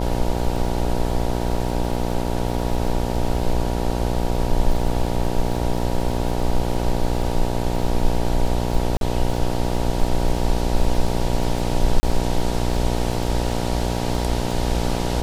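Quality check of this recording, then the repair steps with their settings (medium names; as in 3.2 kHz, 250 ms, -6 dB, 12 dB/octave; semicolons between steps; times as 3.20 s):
buzz 60 Hz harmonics 16 -24 dBFS
crackle 31 per s -28 dBFS
8.97–9.01 s: dropout 42 ms
12.00–12.03 s: dropout 30 ms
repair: de-click; de-hum 60 Hz, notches 16; interpolate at 8.97 s, 42 ms; interpolate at 12.00 s, 30 ms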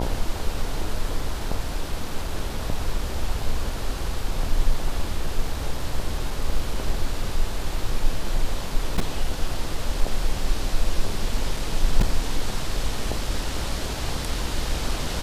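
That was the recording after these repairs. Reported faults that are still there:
nothing left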